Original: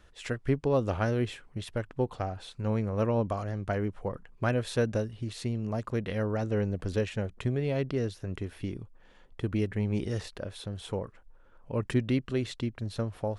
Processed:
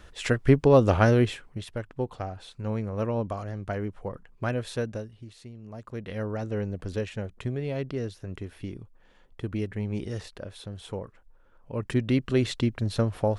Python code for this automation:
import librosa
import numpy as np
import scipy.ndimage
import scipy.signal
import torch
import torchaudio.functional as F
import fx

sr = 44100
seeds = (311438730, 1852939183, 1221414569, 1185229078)

y = fx.gain(x, sr, db=fx.line((1.14, 8.5), (1.7, -1.0), (4.68, -1.0), (5.53, -13.0), (6.2, -1.5), (11.73, -1.5), (12.42, 7.0)))